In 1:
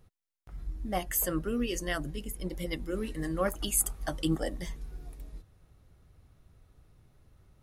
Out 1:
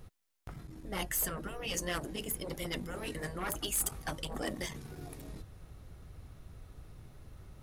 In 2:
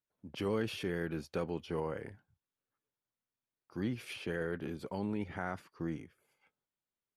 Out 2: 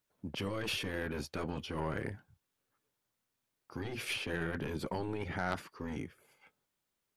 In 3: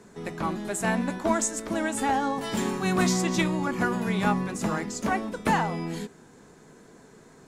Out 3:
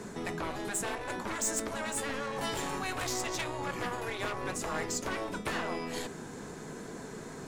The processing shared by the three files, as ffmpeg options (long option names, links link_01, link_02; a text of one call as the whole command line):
ffmpeg -i in.wav -af "asoftclip=type=hard:threshold=-21.5dB,areverse,acompressor=threshold=-35dB:ratio=10,areverse,aeval=exprs='0.0531*(cos(1*acos(clip(val(0)/0.0531,-1,1)))-cos(1*PI/2))+0.0133*(cos(2*acos(clip(val(0)/0.0531,-1,1)))-cos(2*PI/2))+0.00841*(cos(4*acos(clip(val(0)/0.0531,-1,1)))-cos(4*PI/2))+0.00596*(cos(5*acos(clip(val(0)/0.0531,-1,1)))-cos(5*PI/2))':channel_layout=same,afftfilt=real='re*lt(hypot(re,im),0.0794)':imag='im*lt(hypot(re,im),0.0794)':win_size=1024:overlap=0.75,volume=5dB" out.wav